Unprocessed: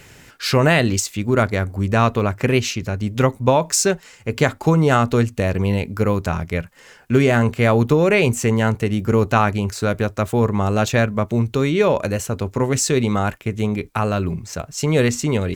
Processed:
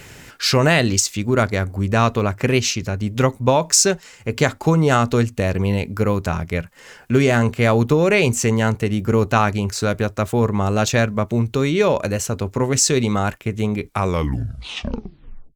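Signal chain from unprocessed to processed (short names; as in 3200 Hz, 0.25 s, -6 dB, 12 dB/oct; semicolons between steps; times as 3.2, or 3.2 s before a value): tape stop at the end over 1.68 s; in parallel at -2 dB: compressor, threshold -37 dBFS, peak gain reduction 24 dB; on the sum: dynamic EQ 5600 Hz, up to +6 dB, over -37 dBFS, Q 1.1; gain -1 dB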